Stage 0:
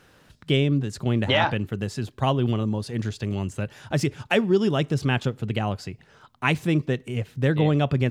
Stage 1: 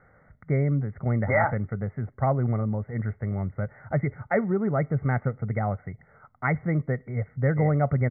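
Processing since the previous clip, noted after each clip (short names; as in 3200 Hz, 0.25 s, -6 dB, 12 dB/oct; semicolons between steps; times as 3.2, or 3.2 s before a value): Chebyshev low-pass 2200 Hz, order 10; comb 1.5 ms, depth 58%; gain -2 dB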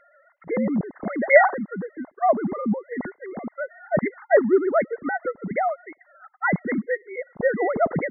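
sine-wave speech; gain +2.5 dB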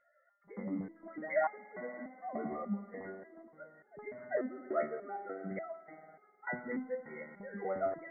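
spring tank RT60 3.8 s, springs 52 ms, chirp 45 ms, DRR 9.5 dB; stepped resonator 3.4 Hz 75–420 Hz; gain -5.5 dB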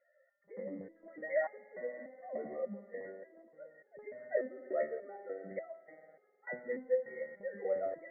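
vocal tract filter e; gain +9.5 dB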